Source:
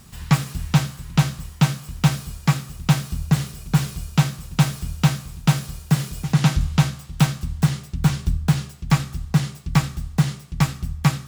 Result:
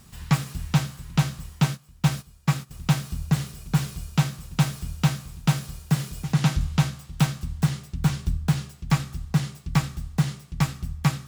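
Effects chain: 1.64–2.71 gate -26 dBFS, range -14 dB; gain -4 dB

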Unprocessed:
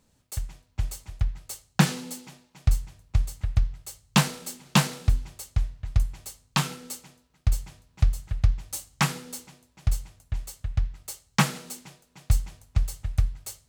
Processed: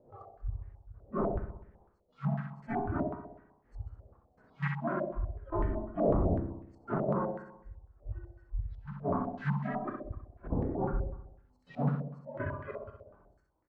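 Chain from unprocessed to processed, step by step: whole clip reversed; wind noise 510 Hz -24 dBFS; spectral noise reduction 27 dB; treble ducked by the level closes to 310 Hz, closed at -13.5 dBFS; harmonic-percussive split percussive -10 dB; compressor 3:1, threshold -22 dBFS, peak gain reduction 7 dB; step gate "x.xxxxx..xx" 144 bpm -12 dB; doubler 49 ms -14 dB; flutter echo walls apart 10.9 m, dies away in 0.83 s; stepped low-pass 8 Hz 600–1900 Hz; gain -6.5 dB

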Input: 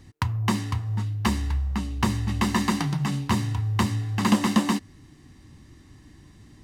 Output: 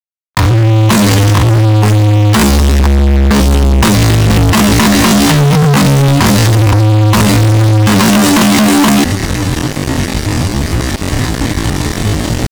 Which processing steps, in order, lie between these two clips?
opening faded in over 0.75 s; in parallel at -1.5 dB: negative-ratio compressor -32 dBFS, ratio -1; on the sum: sample leveller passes 2; fuzz box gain 34 dB, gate -42 dBFS; tempo 0.53×; gain +7 dB

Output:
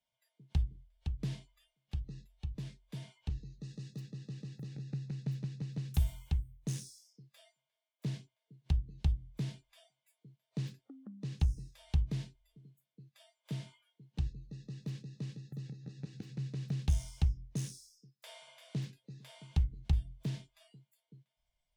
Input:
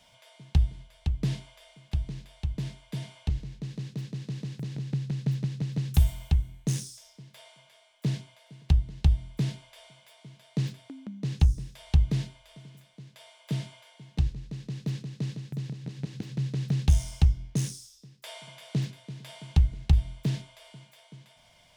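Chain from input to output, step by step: spectral noise reduction 21 dB; 3.41–4 high shelf 5100 Hz +7.5 dB; gain -9 dB

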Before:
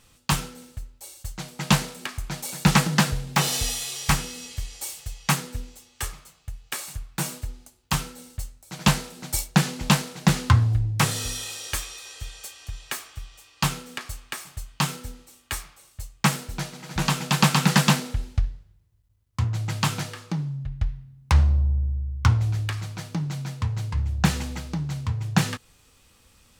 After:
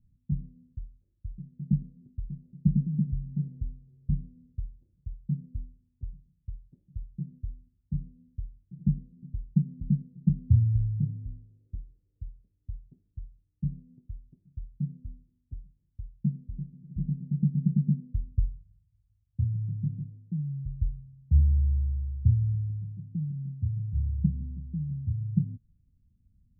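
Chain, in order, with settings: inverse Chebyshev low-pass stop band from 1200 Hz, stop band 80 dB; gain -3 dB

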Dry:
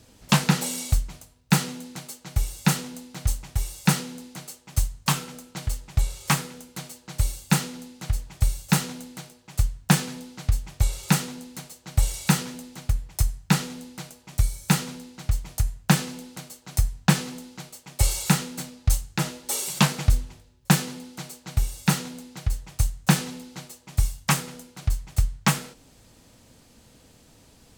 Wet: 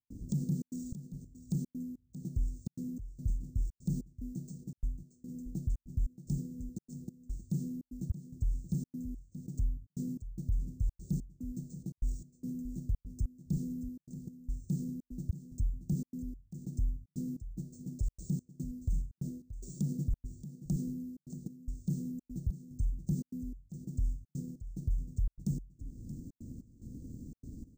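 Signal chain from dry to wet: Chebyshev band-stop 290–8600 Hz, order 3; high shelf 4300 Hz -6 dB; upward compressor, threshold -33 dBFS; limiter -24 dBFS, peak gain reduction 16.5 dB; step gate ".xxxxx.xx." 146 bpm -60 dB; on a send: echo 0.628 s -13 dB; on the sum: careless resampling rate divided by 3×, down filtered, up hold

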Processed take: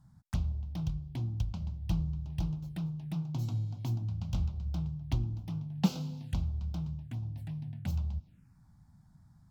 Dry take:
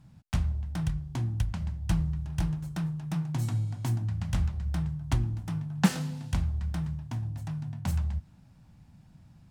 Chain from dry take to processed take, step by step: envelope phaser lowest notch 410 Hz, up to 1800 Hz, full sweep at -29.5 dBFS; gain -4 dB

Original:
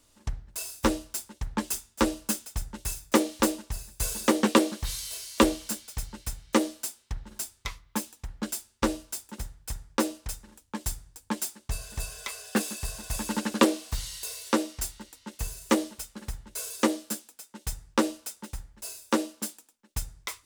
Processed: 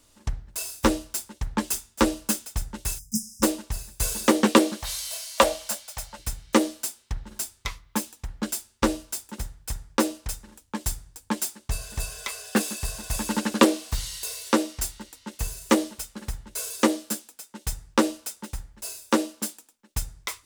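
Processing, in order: 2.99–3.43 spectral delete 220–4900 Hz; 4.82–6.19 resonant low shelf 470 Hz -9 dB, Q 3; gain +3.5 dB

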